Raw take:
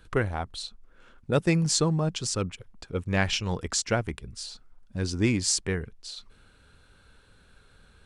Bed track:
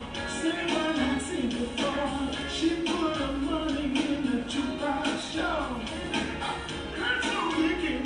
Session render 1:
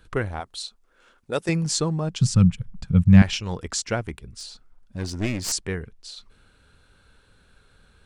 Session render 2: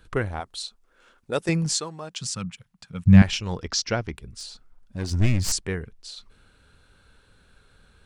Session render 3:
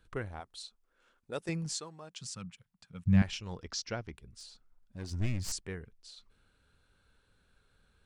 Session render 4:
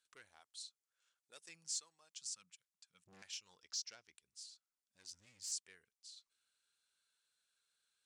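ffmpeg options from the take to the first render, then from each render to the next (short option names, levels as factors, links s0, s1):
-filter_complex "[0:a]asettb=1/sr,asplit=3[s0][s1][s2];[s0]atrim=end=0.404[s3];[s1]atrim=start=0.4:end=1.49,asetpts=PTS-STARTPTS,afade=t=in:d=0.004:c=qsin,afade=t=out:st=1.086:d=0.004:c=qsin,bass=f=250:g=-12,treble=f=4000:g=5[s4];[s2]atrim=start=1.486[s5];[s3][s4]acrossfade=d=0.004:c1=hsin:c2=qsin[s6];[s6][s5]acrossfade=d=0.004:c1=qsin:c2=hsin,asettb=1/sr,asplit=3[s7][s8][s9];[s7]atrim=end=2.214[s10];[s8]atrim=start=2.21:end=3.22,asetpts=PTS-STARTPTS,afade=t=in:d=0.004:c=qsin,afade=t=out:st=1.006:d=0.004:c=qsin,lowshelf=f=250:t=q:w=3:g=13[s11];[s9]atrim=start=3.216[s12];[s10][s11]acrossfade=d=0.004:c1=hsin:c2=qsin[s13];[s13][s12]acrossfade=d=0.004:c1=qsin:c2=hsin,asettb=1/sr,asplit=3[s14][s15][s16];[s14]atrim=end=4.174[s17];[s15]atrim=start=4.17:end=5.52,asetpts=PTS-STARTPTS,afade=t=in:d=0.004:c=qsin,afade=t=out:st=1.346:d=0.004:c=qsin,aeval=exprs='clip(val(0),-1,0.0299)':c=same[s18];[s16]atrim=start=5.516[s19];[s17][s18]acrossfade=d=0.004:c1=hsin:c2=qsin[s20];[s20][s19]acrossfade=d=0.004:c1=qsin:c2=hsin"
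-filter_complex "[0:a]asettb=1/sr,asplit=3[s0][s1][s2];[s0]atrim=end=1.734[s3];[s1]atrim=start=1.73:end=3.06,asetpts=PTS-STARTPTS,afade=t=in:d=0.004:c=qsin,afade=t=out:st=1.326:d=0.004:c=qsin,highpass=f=1100:p=1[s4];[s2]atrim=start=3.056[s5];[s3][s4]acrossfade=d=0.004:c1=hsin:c2=qsin[s6];[s6][s5]acrossfade=d=0.004:c1=qsin:c2=hsin,asettb=1/sr,asplit=3[s7][s8][s9];[s7]atrim=end=3.604[s10];[s8]atrim=start=3.6:end=4.16,asetpts=PTS-STARTPTS,afade=t=in:d=0.004:c=qsin,afade=t=out:st=0.556:d=0.004:c=qsin,highshelf=f=6800:t=q:w=3:g=-8[s11];[s9]atrim=start=4.156[s12];[s10][s11]acrossfade=d=0.004:c1=hsin:c2=qsin[s13];[s13][s12]acrossfade=d=0.004:c1=qsin:c2=hsin,asplit=3[s14][s15][s16];[s14]afade=t=out:st=5.1:d=0.02[s17];[s15]asubboost=boost=6:cutoff=150,afade=t=in:st=5.1:d=0.02,afade=t=out:st=5.57:d=0.02[s18];[s16]afade=t=in:st=5.57:d=0.02[s19];[s17][s18][s19]amix=inputs=3:normalize=0"
-af "volume=0.251"
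-af "asoftclip=type=tanh:threshold=0.0335,bandpass=f=7100:t=q:w=1.2:csg=0"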